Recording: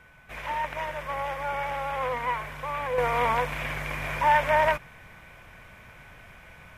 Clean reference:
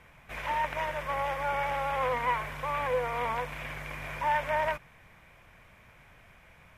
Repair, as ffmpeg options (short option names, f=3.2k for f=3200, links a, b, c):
-af "bandreject=f=1.5k:w=30,asetnsamples=n=441:p=0,asendcmd='2.98 volume volume -7dB',volume=0dB"